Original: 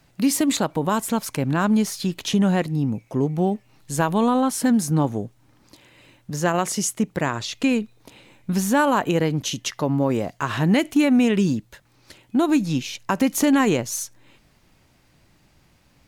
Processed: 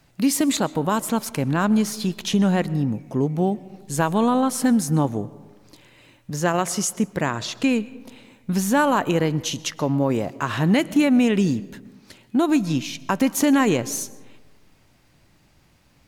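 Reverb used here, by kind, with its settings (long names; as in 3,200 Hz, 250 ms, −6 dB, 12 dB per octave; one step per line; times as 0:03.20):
comb and all-pass reverb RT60 1.3 s, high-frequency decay 0.45×, pre-delay 85 ms, DRR 19 dB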